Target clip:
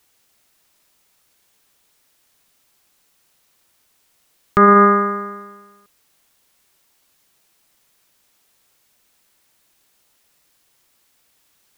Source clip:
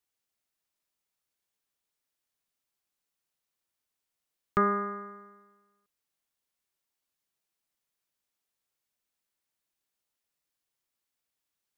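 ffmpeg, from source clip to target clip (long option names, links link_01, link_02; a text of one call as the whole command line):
ffmpeg -i in.wav -af "alimiter=level_in=24.5dB:limit=-1dB:release=50:level=0:latency=1,volume=-1dB" out.wav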